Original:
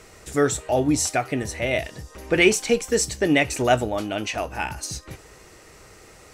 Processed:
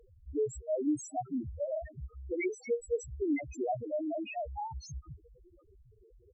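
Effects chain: dynamic EQ 100 Hz, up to -5 dB, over -52 dBFS, Q 7.1; compressor 10:1, threshold -23 dBFS, peak gain reduction 12.5 dB; speakerphone echo 0.28 s, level -25 dB; loudest bins only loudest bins 1; gain +2.5 dB; Opus 64 kbps 48000 Hz

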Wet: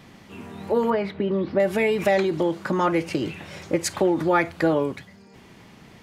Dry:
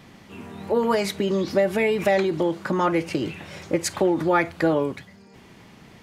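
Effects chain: 0.9–1.6 air absorption 420 m

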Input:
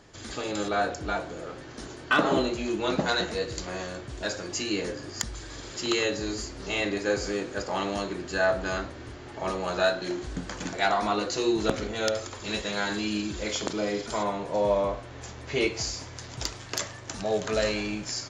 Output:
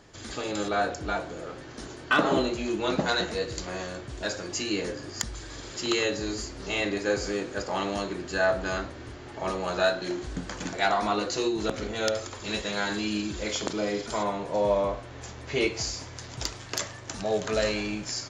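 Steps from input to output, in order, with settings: 11.47–11.92 compressor, threshold -24 dBFS, peak gain reduction 6 dB

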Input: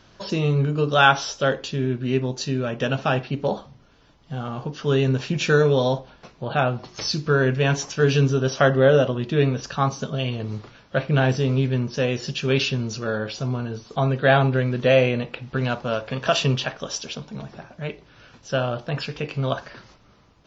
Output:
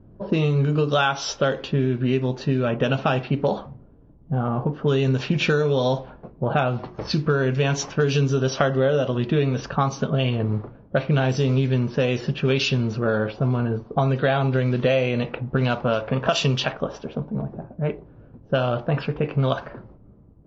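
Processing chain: low-pass opened by the level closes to 320 Hz, open at -16.5 dBFS; compressor 6:1, threshold -25 dBFS, peak gain reduction 14.5 dB; dynamic EQ 1700 Hz, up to -5 dB, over -51 dBFS, Q 7.3; gain +7.5 dB

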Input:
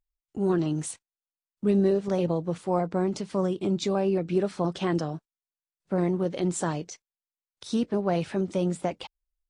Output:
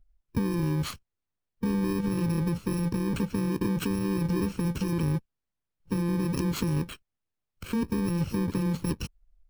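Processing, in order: FFT order left unsorted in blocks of 64 samples; RIAA curve playback; in parallel at -1.5 dB: negative-ratio compressor -29 dBFS, ratio -1; on the sum: limiter -14.5 dBFS, peak gain reduction 7.5 dB; harmonic-percussive split harmonic -5 dB

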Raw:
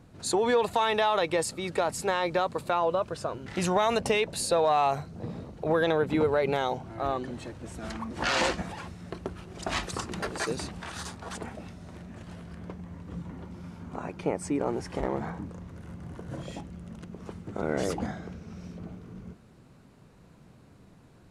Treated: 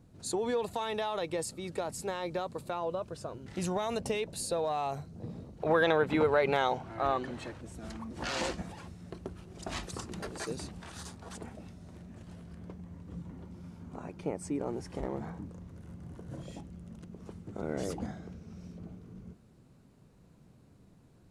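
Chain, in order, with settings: bell 1600 Hz -7.5 dB 3 oct, from 5.6 s +6 dB, from 7.61 s -6 dB; gain -4 dB

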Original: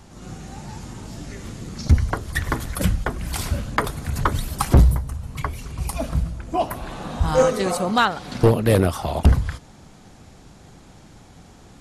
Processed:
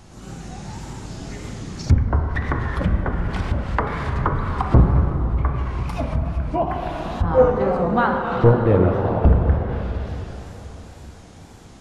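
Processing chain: plate-style reverb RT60 3.9 s, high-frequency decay 0.95×, DRR 1 dB; treble ducked by the level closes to 1300 Hz, closed at -16.5 dBFS; wow and flutter 83 cents

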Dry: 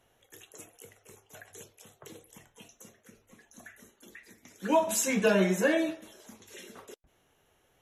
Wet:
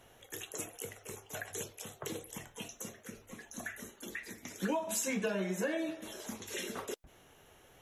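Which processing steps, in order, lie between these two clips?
compressor 8:1, threshold -40 dBFS, peak gain reduction 20 dB; gain +8 dB

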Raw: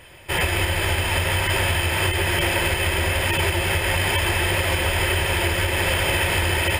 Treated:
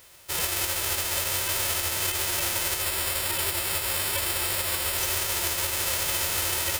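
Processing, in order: spectral whitening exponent 0.1; 2.82–4.98 notch 6200 Hz, Q 5.1; gain -6 dB

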